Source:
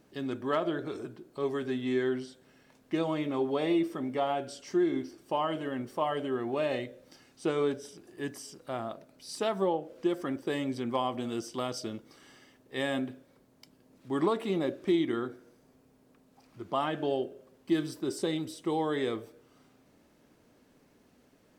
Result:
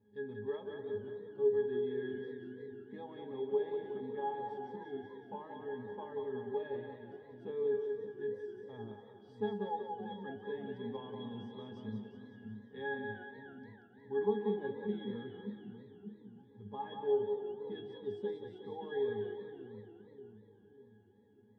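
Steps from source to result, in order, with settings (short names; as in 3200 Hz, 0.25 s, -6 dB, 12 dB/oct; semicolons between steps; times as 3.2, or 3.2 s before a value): high shelf 6100 Hz -7 dB; octave resonator G#, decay 0.28 s; on a send: split-band echo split 320 Hz, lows 0.589 s, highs 0.183 s, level -5 dB; on the sum: warbling echo 0.291 s, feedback 62%, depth 193 cents, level -17.5 dB; gain +6.5 dB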